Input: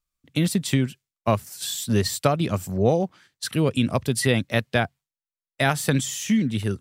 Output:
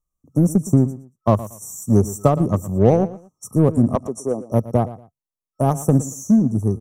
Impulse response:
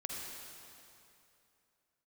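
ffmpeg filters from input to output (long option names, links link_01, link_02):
-filter_complex "[0:a]asettb=1/sr,asplit=3[link_01][link_02][link_03];[link_01]atrim=end=3.954[link_04];[link_02]atrim=start=3.95:end=4.52,asetpts=PTS-STARTPTS,afade=type=in:duration=0.004:curve=qsin,afade=type=out:start_time=0.566:duration=0.004:curve=qsin,highpass=390,lowpass=7000[link_05];[link_03]atrim=start=4.516[link_06];[link_04][link_05]acrossfade=duration=0.004:curve1=hsin:curve2=qsin[link_07];[link_07][link_06]acrossfade=duration=0.004:curve1=qsin:curve2=hsin,afftfilt=real='re*(1-between(b*sr/4096,1300,5500))':imag='im*(1-between(b*sr/4096,1300,5500))':win_size=4096:overlap=0.75,asplit=2[link_08][link_09];[link_09]acrusher=bits=2:mix=0:aa=0.5,volume=-11dB[link_10];[link_08][link_10]amix=inputs=2:normalize=0,tiltshelf=frequency=780:gain=3.5,aecho=1:1:116|232:0.158|0.0365,volume=1.5dB"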